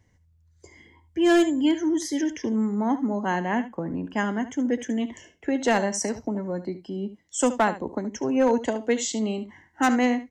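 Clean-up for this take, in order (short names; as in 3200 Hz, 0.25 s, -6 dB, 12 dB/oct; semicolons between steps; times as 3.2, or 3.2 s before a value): clip repair -13.5 dBFS; inverse comb 73 ms -13.5 dB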